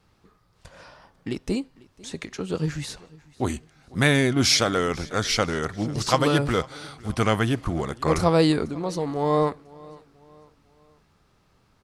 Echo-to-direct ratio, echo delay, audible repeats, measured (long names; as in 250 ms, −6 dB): −22.0 dB, 497 ms, 2